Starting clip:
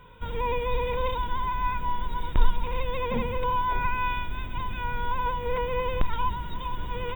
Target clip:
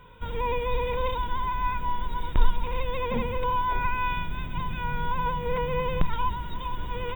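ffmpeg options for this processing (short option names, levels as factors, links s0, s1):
-filter_complex "[0:a]asettb=1/sr,asplit=3[s0][s1][s2];[s0]atrim=end=4.124[s3];[s1]atrim=start=4.12:end=6.16,asetpts=PTS-STARTPTS,afade=t=in:d=0.004:c=qsin,afade=t=out:st=2.036:d=0.004:c=qsin,equalizer=f=160:w=4.4:g=13[s4];[s2]atrim=start=6.156[s5];[s3][s4]acrossfade=d=0.004:c1=hsin:c2=qsin[s6];[s6][s5]acrossfade=d=0.004:c1=qsin:c2=hsin"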